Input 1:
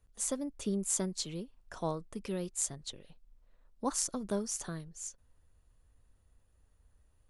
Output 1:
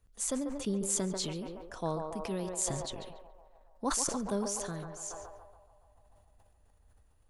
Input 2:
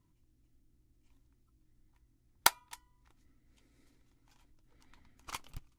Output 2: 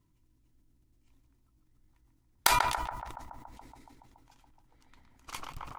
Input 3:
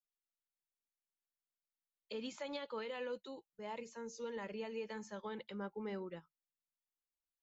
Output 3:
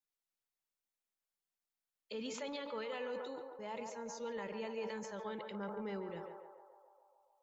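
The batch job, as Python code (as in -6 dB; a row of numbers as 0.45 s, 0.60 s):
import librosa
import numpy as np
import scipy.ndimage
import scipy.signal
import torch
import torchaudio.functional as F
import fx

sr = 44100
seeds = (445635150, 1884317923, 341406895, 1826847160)

y = fx.echo_banded(x, sr, ms=141, feedback_pct=78, hz=790.0, wet_db=-6.0)
y = fx.sustainer(y, sr, db_per_s=36.0)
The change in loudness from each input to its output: +1.5 LU, +3.0 LU, +1.5 LU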